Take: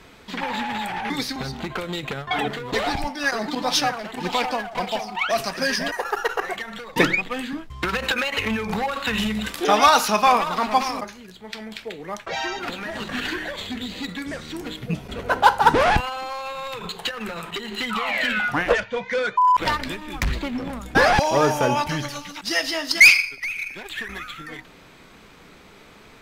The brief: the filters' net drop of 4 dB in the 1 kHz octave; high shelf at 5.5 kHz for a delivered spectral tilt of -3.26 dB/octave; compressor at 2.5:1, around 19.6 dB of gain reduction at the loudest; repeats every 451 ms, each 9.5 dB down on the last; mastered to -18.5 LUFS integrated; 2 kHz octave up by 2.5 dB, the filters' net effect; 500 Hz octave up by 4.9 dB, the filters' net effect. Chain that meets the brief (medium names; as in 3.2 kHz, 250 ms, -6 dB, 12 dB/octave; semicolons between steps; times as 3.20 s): peaking EQ 500 Hz +8 dB; peaking EQ 1 kHz -9 dB; peaking EQ 2 kHz +4 dB; treble shelf 5.5 kHz +6.5 dB; compression 2.5:1, threshold -35 dBFS; feedback delay 451 ms, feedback 33%, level -9.5 dB; trim +14 dB